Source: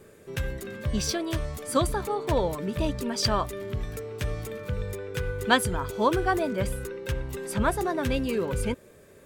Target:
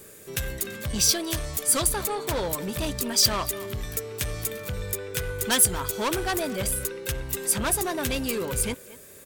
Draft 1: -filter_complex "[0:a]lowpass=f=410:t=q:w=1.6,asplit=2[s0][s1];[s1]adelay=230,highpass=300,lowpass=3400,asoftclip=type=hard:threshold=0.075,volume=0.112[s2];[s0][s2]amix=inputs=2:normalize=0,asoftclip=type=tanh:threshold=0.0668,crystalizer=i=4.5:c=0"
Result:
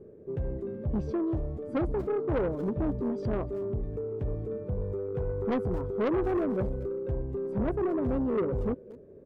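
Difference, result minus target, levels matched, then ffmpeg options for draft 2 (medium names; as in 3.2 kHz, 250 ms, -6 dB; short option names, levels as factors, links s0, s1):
500 Hz band +7.5 dB
-filter_complex "[0:a]asplit=2[s0][s1];[s1]adelay=230,highpass=300,lowpass=3400,asoftclip=type=hard:threshold=0.075,volume=0.112[s2];[s0][s2]amix=inputs=2:normalize=0,asoftclip=type=tanh:threshold=0.0668,crystalizer=i=4.5:c=0"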